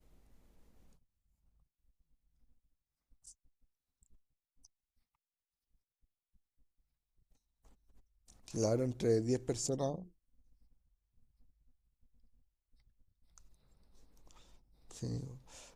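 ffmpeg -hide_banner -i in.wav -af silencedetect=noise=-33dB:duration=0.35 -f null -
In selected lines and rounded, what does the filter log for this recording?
silence_start: 0.00
silence_end: 8.48 | silence_duration: 8.48
silence_start: 9.95
silence_end: 15.03 | silence_duration: 5.08
silence_start: 15.16
silence_end: 15.76 | silence_duration: 0.60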